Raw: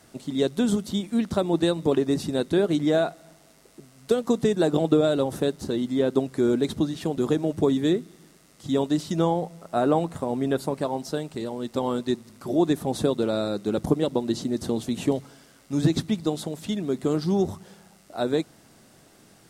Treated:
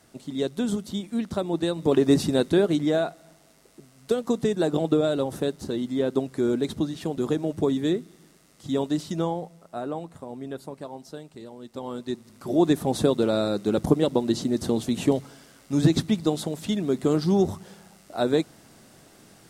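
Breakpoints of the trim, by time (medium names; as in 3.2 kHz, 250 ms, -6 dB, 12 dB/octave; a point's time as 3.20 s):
1.70 s -3.5 dB
2.12 s +5.5 dB
2.98 s -2 dB
9.04 s -2 dB
9.90 s -10.5 dB
11.68 s -10.5 dB
12.67 s +2 dB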